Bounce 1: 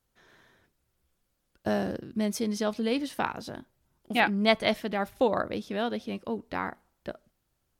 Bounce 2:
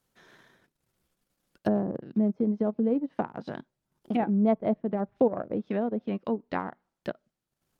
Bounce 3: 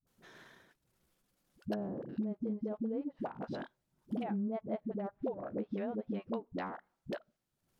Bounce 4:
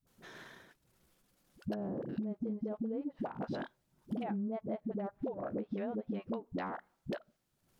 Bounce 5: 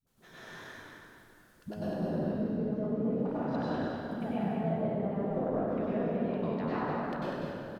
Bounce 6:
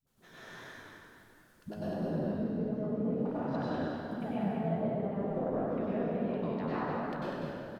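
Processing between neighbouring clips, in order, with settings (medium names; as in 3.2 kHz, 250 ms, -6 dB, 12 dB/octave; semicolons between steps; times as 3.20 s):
low-pass that closes with the level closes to 570 Hz, closed at -26 dBFS; transient shaper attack +1 dB, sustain -11 dB; resonant low shelf 110 Hz -7.5 dB, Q 1.5; trim +2.5 dB
compression 6:1, threshold -34 dBFS, peak gain reduction 15.5 dB; phase dispersion highs, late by 70 ms, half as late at 340 Hz
compression, threshold -39 dBFS, peak gain reduction 8 dB; trim +5 dB
frequency-shifting echo 196 ms, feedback 31%, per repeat -35 Hz, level -5 dB; plate-style reverb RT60 2.5 s, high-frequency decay 0.65×, pre-delay 85 ms, DRR -10 dB; trim -4.5 dB
flange 1.4 Hz, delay 5.9 ms, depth 8.1 ms, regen +76%; trim +3 dB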